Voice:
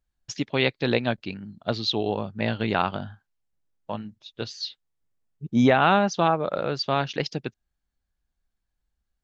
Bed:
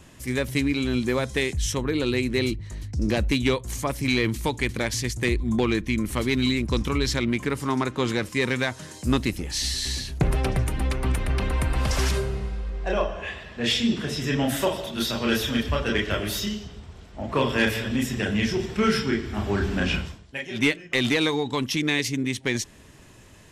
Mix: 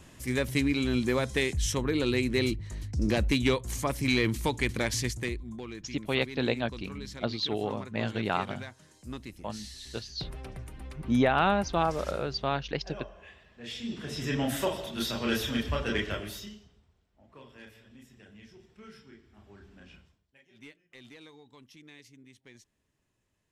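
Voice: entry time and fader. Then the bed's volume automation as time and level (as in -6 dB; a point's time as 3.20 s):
5.55 s, -5.5 dB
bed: 5.06 s -3 dB
5.56 s -18 dB
13.66 s -18 dB
14.23 s -5.5 dB
16.03 s -5.5 dB
17.05 s -28.5 dB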